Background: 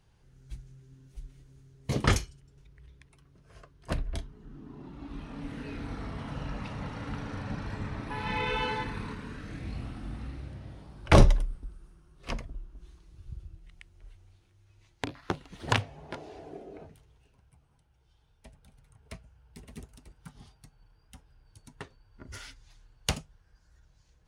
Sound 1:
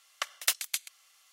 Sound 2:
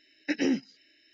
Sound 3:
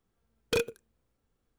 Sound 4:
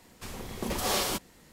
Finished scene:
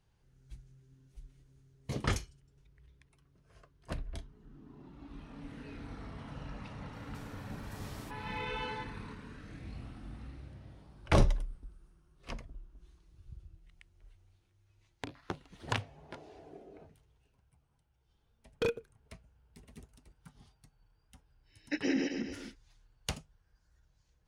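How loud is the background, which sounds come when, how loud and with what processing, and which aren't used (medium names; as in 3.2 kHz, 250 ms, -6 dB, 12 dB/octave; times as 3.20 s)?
background -7.5 dB
6.93 s: add 4 -12.5 dB + compression 3:1, threshold -41 dBFS
18.09 s: add 3 -2.5 dB + low-pass 1.9 kHz 6 dB/octave
21.43 s: add 2 -5.5 dB, fades 0.10 s + backward echo that repeats 132 ms, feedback 56%, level -2 dB
not used: 1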